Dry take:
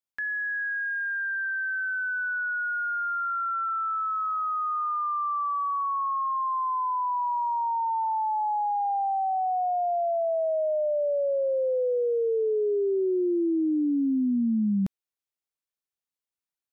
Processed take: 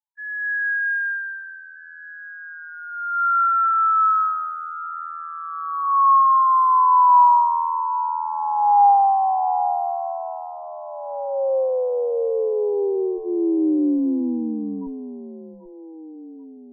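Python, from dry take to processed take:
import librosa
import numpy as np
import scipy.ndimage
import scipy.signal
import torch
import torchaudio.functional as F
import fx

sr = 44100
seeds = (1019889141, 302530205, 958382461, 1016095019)

p1 = fx.peak_eq(x, sr, hz=840.0, db=11.0, octaves=0.82)
p2 = fx.notch(p1, sr, hz=360.0, q=12.0)
p3 = fx.schmitt(p2, sr, flips_db=-33.0)
p4 = p2 + F.gain(torch.from_numpy(p3), -9.5).numpy()
p5 = fx.filter_lfo_lowpass(p4, sr, shape='sine', hz=0.34, low_hz=400.0, high_hz=1700.0, q=2.1)
p6 = fx.fixed_phaser(p5, sr, hz=640.0, stages=6)
p7 = fx.spec_topn(p6, sr, count=2)
y = p7 + fx.echo_alternate(p7, sr, ms=787, hz=1100.0, feedback_pct=58, wet_db=-10.5, dry=0)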